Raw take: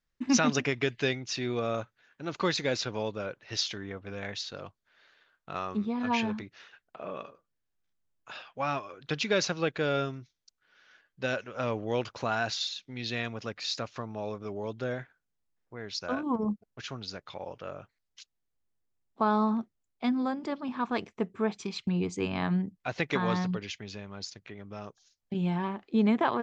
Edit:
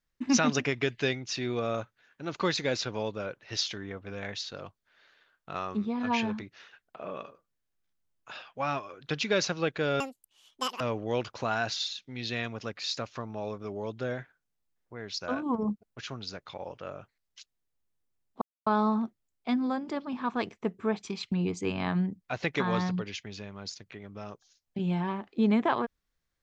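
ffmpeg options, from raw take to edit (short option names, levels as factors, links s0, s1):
-filter_complex "[0:a]asplit=4[s0][s1][s2][s3];[s0]atrim=end=10.004[s4];[s1]atrim=start=10:end=11.61,asetpts=PTS-STARTPTS,asetrate=88200,aresample=44100,atrim=end_sample=35500,asetpts=PTS-STARTPTS[s5];[s2]atrim=start=11.606:end=19.22,asetpts=PTS-STARTPTS,afade=t=out:st=7.61:d=0.004:c=hsin,apad=pad_dur=0.25[s6];[s3]atrim=start=19.22,asetpts=PTS-STARTPTS,afade=t=in:d=0.004:c=hsin[s7];[s4][s5]acrossfade=d=0.004:c1=hsin:c2=hsin[s8];[s6][s7]concat=n=2:v=0:a=1[s9];[s8][s9]acrossfade=d=0.004:c1=hsin:c2=hsin"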